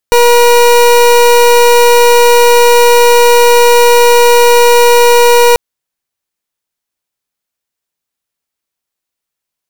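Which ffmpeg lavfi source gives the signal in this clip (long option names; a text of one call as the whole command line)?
ffmpeg -f lavfi -i "aevalsrc='0.562*(2*lt(mod(479*t,1),0.29)-1)':duration=5.44:sample_rate=44100" out.wav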